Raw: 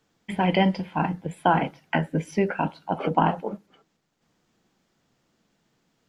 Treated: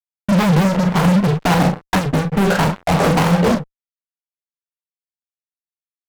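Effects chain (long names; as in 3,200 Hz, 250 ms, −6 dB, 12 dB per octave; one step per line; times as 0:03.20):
low-pass filter 1,400 Hz 24 dB per octave
parametric band 170 Hz +11 dB 0.53 octaves
downward compressor 3 to 1, threshold −25 dBFS, peak gain reduction 11 dB
fuzz pedal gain 45 dB, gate −46 dBFS
ambience of single reflections 34 ms −8 dB, 46 ms −11.5 dB
wow of a warped record 78 rpm, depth 250 cents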